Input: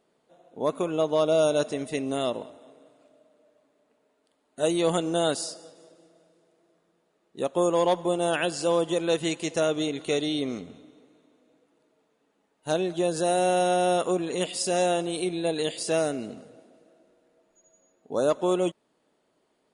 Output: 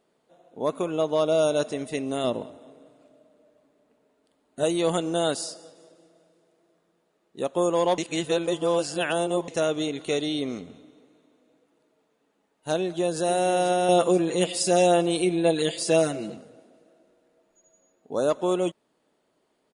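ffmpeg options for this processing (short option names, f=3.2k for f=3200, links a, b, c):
-filter_complex "[0:a]asettb=1/sr,asplit=3[a][b][c];[a]atrim=end=2.244[d];[b]atrim=start=2.24:end=4.64,asetpts=PTS-STARTPTS,afade=t=in:d=0.004:c=qsin,afade=t=out:st=2.396:d=0.004:c=qsin,lowshelf=f=320:g=8[e];[c]atrim=start=4.636[f];[d][e]acrossfade=d=0.004:c1=hsin:c2=qsin[g];[g][f]acrossfade=d=0.004:c1=qsin:c2=hsin,asplit=2[h][i];[i]afade=t=in:st=12.79:d=0.01,afade=t=out:st=13.23:d=0.01,aecho=0:1:490|980|1470|1960|2450:0.266073|0.133036|0.0665181|0.0332591|0.0166295[j];[h][j]amix=inputs=2:normalize=0,asettb=1/sr,asplit=3[k][l][m];[k]atrim=end=13.884[n];[l]atrim=start=13.88:end=16.37,asetpts=PTS-STARTPTS,afade=t=in:d=0.004:c=qsin,afade=t=out:st=2.486:d=0.004:c=qsin,aecho=1:1:5.9:1,atrim=end_sample=109809[o];[m]atrim=start=16.366[p];[n][o]acrossfade=d=0.004:c1=hsin:c2=qsin[q];[q][p]acrossfade=d=0.004:c1=qsin:c2=hsin,asplit=3[r][s][t];[r]atrim=end=7.982[u];[s]atrim=start=7.978:end=9.482,asetpts=PTS-STARTPTS,areverse[v];[t]atrim=start=9.478[w];[u][v]acrossfade=d=0.004:c1=hsin:c2=hsin[x];[x][w]acrossfade=d=0.004:c1=hsin:c2=hsin"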